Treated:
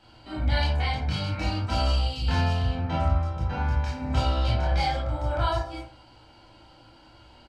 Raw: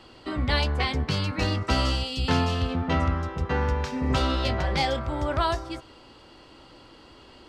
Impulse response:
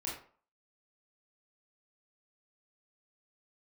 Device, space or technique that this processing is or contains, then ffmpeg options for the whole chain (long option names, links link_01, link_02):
microphone above a desk: -filter_complex "[0:a]aecho=1:1:1.3:0.58[link_01];[1:a]atrim=start_sample=2205[link_02];[link_01][link_02]afir=irnorm=-1:irlink=0,volume=-5dB"